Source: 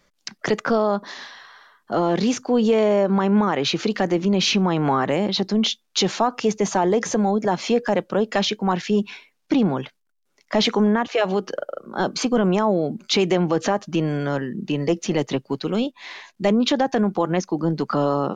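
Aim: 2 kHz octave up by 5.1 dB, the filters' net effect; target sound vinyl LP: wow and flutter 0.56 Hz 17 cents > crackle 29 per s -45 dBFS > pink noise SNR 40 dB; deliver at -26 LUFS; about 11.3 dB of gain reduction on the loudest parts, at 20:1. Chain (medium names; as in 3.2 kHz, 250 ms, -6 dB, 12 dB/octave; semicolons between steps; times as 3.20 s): peaking EQ 2 kHz +6.5 dB; compression 20:1, threshold -25 dBFS; wow and flutter 0.56 Hz 17 cents; crackle 29 per s -45 dBFS; pink noise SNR 40 dB; trim +4.5 dB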